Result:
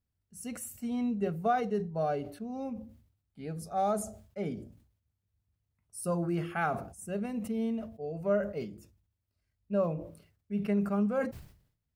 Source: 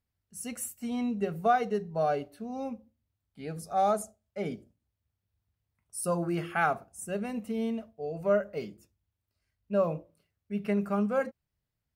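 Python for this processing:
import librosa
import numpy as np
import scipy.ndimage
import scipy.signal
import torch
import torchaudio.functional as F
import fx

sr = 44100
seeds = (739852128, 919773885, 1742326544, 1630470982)

y = fx.low_shelf(x, sr, hz=410.0, db=7.0)
y = fx.sustainer(y, sr, db_per_s=96.0)
y = y * 10.0 ** (-5.5 / 20.0)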